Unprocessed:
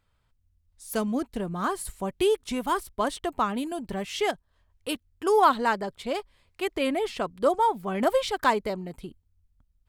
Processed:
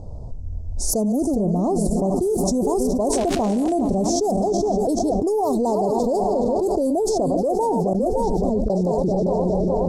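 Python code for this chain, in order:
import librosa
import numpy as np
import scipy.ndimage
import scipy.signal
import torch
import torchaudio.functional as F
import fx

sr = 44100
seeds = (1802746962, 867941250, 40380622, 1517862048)

p1 = fx.reverse_delay_fb(x, sr, ms=208, feedback_pct=64, wet_db=-12.0)
p2 = 10.0 ** (-23.0 / 20.0) * np.tanh(p1 / 10.0 ** (-23.0 / 20.0))
p3 = p1 + (p2 * 10.0 ** (-3.5 / 20.0))
p4 = scipy.signal.sosfilt(scipy.signal.ellip(3, 1.0, 50, [710.0, 5900.0], 'bandstop', fs=sr, output='sos'), p3)
p5 = fx.dmg_crackle(p4, sr, seeds[0], per_s=fx.line((3.12, 480.0), (3.72, 190.0)), level_db=-32.0, at=(3.12, 3.72), fade=0.02)
p6 = fx.tone_stack(p5, sr, knobs='10-0-1', at=(7.93, 8.7))
p7 = fx.env_lowpass(p6, sr, base_hz=2600.0, full_db=-19.0)
p8 = p7 + fx.echo_single(p7, sr, ms=564, db=-20.5, dry=0)
p9 = fx.rider(p8, sr, range_db=10, speed_s=2.0)
p10 = fx.high_shelf(p9, sr, hz=4100.0, db=-7.5, at=(1.36, 1.88))
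p11 = fx.env_flatten(p10, sr, amount_pct=100)
y = p11 * 10.0 ** (-4.0 / 20.0)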